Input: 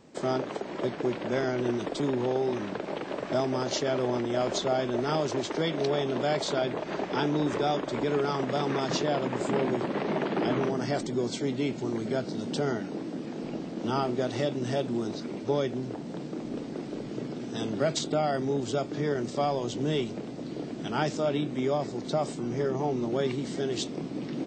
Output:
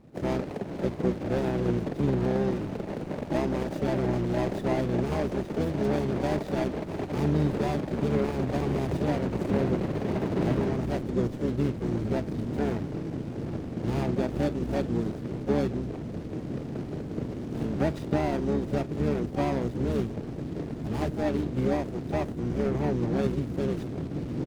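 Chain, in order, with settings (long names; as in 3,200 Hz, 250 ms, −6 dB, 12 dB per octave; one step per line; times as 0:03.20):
running median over 41 samples
echo with shifted repeats 431 ms, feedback 63%, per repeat −100 Hz, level −22 dB
pitch-shifted copies added −12 semitones −1 dB, +5 semitones −10 dB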